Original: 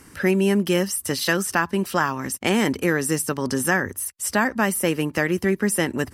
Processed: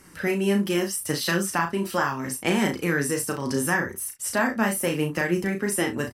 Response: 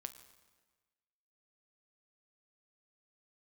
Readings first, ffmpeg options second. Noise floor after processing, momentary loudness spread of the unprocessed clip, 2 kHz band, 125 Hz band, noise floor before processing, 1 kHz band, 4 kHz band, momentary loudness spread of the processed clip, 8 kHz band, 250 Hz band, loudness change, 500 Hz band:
-43 dBFS, 4 LU, -2.5 dB, -2.5 dB, -49 dBFS, -2.5 dB, -2.5 dB, 4 LU, -2.5 dB, -3.0 dB, -3.0 dB, -3.0 dB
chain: -af "flanger=delay=5.1:depth=4.2:regen=39:speed=0.76:shape=triangular,aecho=1:1:35|66:0.562|0.188"

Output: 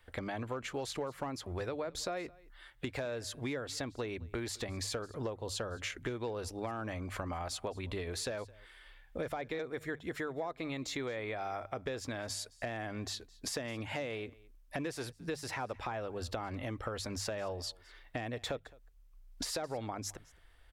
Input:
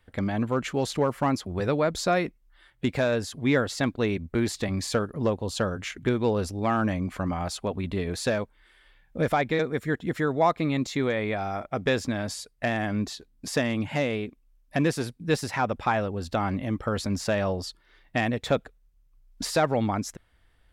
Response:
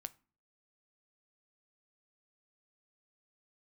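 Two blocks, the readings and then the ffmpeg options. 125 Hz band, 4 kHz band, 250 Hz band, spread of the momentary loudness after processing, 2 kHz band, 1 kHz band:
-13.5 dB, -6.5 dB, -14.5 dB, 5 LU, -11.0 dB, -12.5 dB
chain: -filter_complex "[0:a]equalizer=f=190:w=1.2:g=-12.5,bandreject=f=50:t=h:w=6,bandreject=f=100:t=h:w=6,bandreject=f=150:t=h:w=6,acrossover=split=560[s0][s1];[s1]alimiter=limit=0.0631:level=0:latency=1:release=133[s2];[s0][s2]amix=inputs=2:normalize=0,acompressor=threshold=0.0126:ratio=5,aecho=1:1:215:0.0708,volume=1.26"

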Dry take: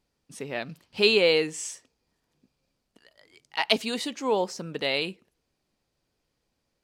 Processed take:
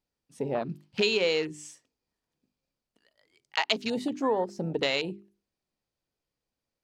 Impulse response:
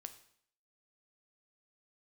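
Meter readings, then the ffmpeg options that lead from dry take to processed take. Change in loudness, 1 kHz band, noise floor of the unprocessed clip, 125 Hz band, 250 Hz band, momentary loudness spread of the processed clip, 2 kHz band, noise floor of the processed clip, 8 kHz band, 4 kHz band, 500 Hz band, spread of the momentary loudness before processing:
-3.0 dB, -1.0 dB, -79 dBFS, +2.5 dB, 0.0 dB, 12 LU, -3.5 dB, under -85 dBFS, -7.5 dB, -4.0 dB, -3.0 dB, 16 LU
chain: -af "afwtdn=0.0224,bandreject=f=50:t=h:w=6,bandreject=f=100:t=h:w=6,bandreject=f=150:t=h:w=6,bandreject=f=200:t=h:w=6,bandreject=f=250:t=h:w=6,bandreject=f=300:t=h:w=6,bandreject=f=350:t=h:w=6,bandreject=f=400:t=h:w=6,acompressor=threshold=0.0282:ratio=4,volume=2.11"

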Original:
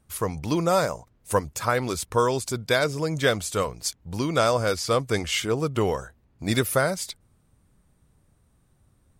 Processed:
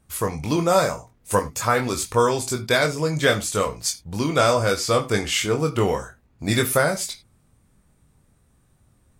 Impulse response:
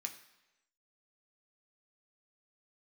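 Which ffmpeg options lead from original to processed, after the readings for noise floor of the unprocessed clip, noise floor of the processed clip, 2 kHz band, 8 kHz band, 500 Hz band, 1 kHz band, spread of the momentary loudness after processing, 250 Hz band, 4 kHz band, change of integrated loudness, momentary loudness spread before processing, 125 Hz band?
-65 dBFS, -62 dBFS, +4.0 dB, +5.0 dB, +3.0 dB, +3.5 dB, 8 LU, +3.0 dB, +3.5 dB, +3.5 dB, 8 LU, +3.0 dB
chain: -filter_complex "[0:a]asplit=2[s0][s1];[1:a]atrim=start_sample=2205,atrim=end_sample=3969,adelay=21[s2];[s1][s2]afir=irnorm=-1:irlink=0,volume=0.944[s3];[s0][s3]amix=inputs=2:normalize=0,volume=1.26"

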